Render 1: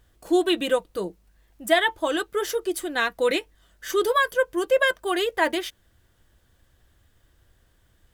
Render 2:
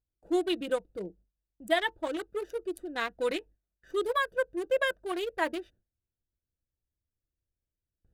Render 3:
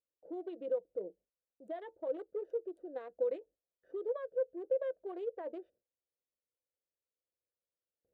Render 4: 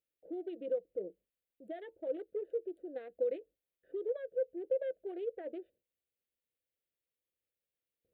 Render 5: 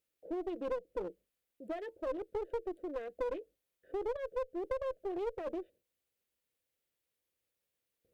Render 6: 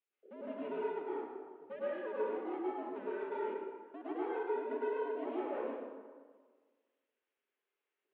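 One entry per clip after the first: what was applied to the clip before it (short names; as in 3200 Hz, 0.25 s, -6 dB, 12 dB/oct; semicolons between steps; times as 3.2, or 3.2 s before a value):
Wiener smoothing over 41 samples; gate with hold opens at -48 dBFS; gain -6.5 dB
limiter -23.5 dBFS, peak gain reduction 10 dB; compressor 2.5:1, threshold -35 dBFS, peak gain reduction 6 dB; band-pass 520 Hz, Q 4.5; gain +5 dB
fixed phaser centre 2500 Hz, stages 4; gain +3 dB
compressor 6:1, threshold -35 dBFS, peak gain reduction 7.5 dB; one-sided clip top -44 dBFS; gain +5.5 dB
short-mantissa float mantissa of 4-bit; plate-style reverb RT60 1.6 s, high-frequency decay 0.6×, pre-delay 90 ms, DRR -9 dB; mistuned SSB -97 Hz 500–3200 Hz; gain -5.5 dB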